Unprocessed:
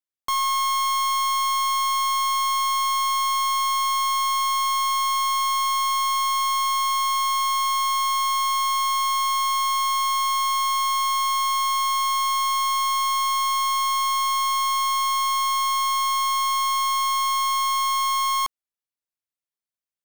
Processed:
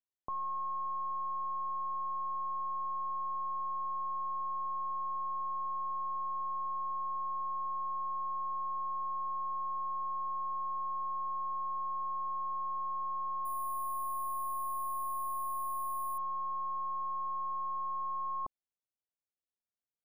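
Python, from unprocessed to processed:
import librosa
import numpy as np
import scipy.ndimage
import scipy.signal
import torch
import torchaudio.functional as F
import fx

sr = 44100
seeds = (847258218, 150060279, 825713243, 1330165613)

y = scipy.signal.sosfilt(scipy.signal.cheby2(4, 50, 2200.0, 'lowpass', fs=sr, output='sos'), x)
y = fx.resample_bad(y, sr, factor=4, down='none', up='hold', at=(13.45, 16.18))
y = y * librosa.db_to_amplitude(-3.5)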